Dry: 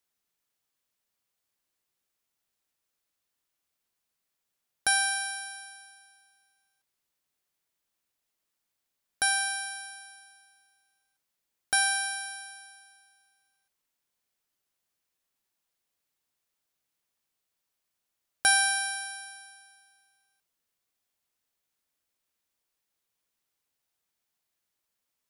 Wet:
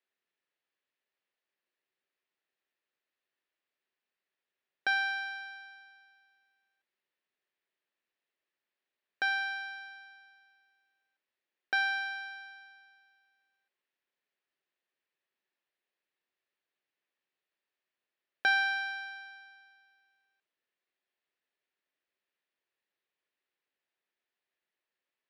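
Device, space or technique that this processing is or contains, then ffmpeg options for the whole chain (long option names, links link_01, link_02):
kitchen radio: -af "highpass=210,equalizer=frequency=380:width_type=q:width=4:gain=7,equalizer=frequency=560:width_type=q:width=4:gain=4,equalizer=frequency=1800:width_type=q:width=4:gain=8,equalizer=frequency=2600:width_type=q:width=4:gain=4,lowpass=frequency=4200:width=0.5412,lowpass=frequency=4200:width=1.3066,volume=-5dB"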